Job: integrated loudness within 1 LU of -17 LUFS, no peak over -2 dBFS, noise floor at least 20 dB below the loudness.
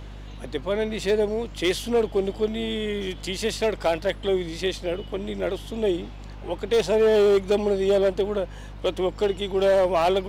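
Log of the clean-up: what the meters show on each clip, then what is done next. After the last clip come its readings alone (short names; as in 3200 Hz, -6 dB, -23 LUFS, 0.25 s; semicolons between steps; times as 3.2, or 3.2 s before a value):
clipped 1.3%; flat tops at -14.5 dBFS; hum 50 Hz; harmonics up to 300 Hz; hum level -37 dBFS; loudness -24.5 LUFS; peak -14.5 dBFS; loudness target -17.0 LUFS
-> clip repair -14.5 dBFS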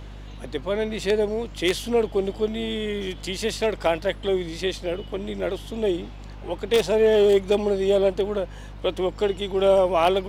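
clipped 0.0%; hum 50 Hz; harmonics up to 300 Hz; hum level -37 dBFS
-> de-hum 50 Hz, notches 6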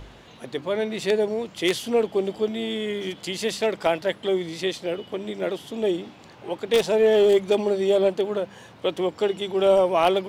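hum none; loudness -24.0 LUFS; peak -5.5 dBFS; loudness target -17.0 LUFS
-> gain +7 dB; limiter -2 dBFS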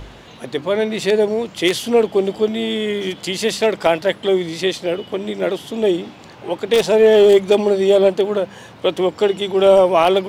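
loudness -17.0 LUFS; peak -2.0 dBFS; noise floor -41 dBFS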